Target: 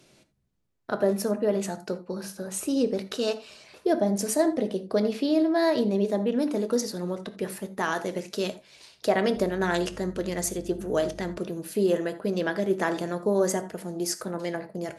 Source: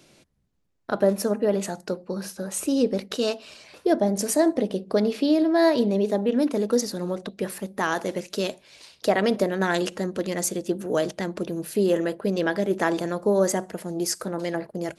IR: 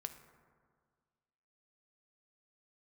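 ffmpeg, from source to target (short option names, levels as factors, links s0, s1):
-filter_complex "[1:a]atrim=start_sample=2205,afade=t=out:st=0.13:d=0.01,atrim=end_sample=6174,asetrate=37926,aresample=44100[s0];[0:a][s0]afir=irnorm=-1:irlink=0,asettb=1/sr,asplit=3[s1][s2][s3];[s1]atrim=end=9.364[s4];[s2]atrim=start=9.36:end=11.38,asetpts=PTS-STARTPTS,afade=t=in:d=0.004:c=qsin,afade=t=out:st=2.016:d=0.004:c=qsin,aeval=exprs='val(0)+0.00562*(sin(2*PI*50*n/s)+sin(2*PI*2*50*n/s)/2+sin(2*PI*3*50*n/s)/3+sin(2*PI*4*50*n/s)/4+sin(2*PI*5*50*n/s)/5)':c=same[s5];[s3]atrim=start=11.376[s6];[s4][s5]acrossfade=d=0.004:c1=hsin:c2=qsin[s7];[s7][s6]acrossfade=d=0.004:c1=qsin:c2=hsin"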